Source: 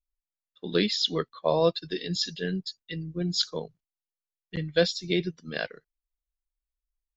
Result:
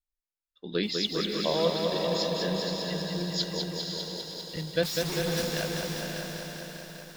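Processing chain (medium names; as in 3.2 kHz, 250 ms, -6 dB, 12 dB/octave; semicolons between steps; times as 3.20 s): 4.83–5.45 s: one-bit comparator; echo that smears into a reverb 528 ms, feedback 47%, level -4 dB; bit-crushed delay 199 ms, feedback 80%, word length 8-bit, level -4 dB; trim -4.5 dB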